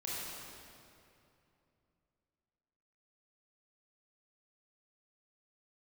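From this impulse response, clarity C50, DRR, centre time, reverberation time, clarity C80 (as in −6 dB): −4.0 dB, −7.5 dB, 172 ms, 2.7 s, −2.0 dB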